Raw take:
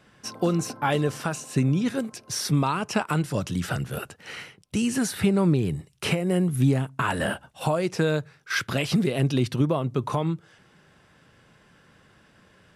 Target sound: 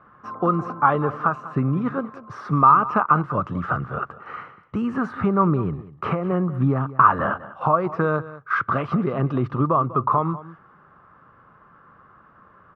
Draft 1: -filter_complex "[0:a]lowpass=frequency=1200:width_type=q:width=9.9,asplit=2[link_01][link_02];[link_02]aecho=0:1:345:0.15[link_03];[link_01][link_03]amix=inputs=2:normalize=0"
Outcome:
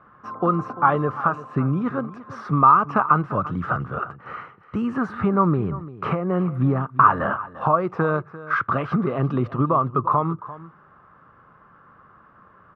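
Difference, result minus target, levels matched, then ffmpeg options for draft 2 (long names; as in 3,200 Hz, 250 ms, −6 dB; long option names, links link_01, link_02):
echo 150 ms late
-filter_complex "[0:a]lowpass=frequency=1200:width_type=q:width=9.9,asplit=2[link_01][link_02];[link_02]aecho=0:1:195:0.15[link_03];[link_01][link_03]amix=inputs=2:normalize=0"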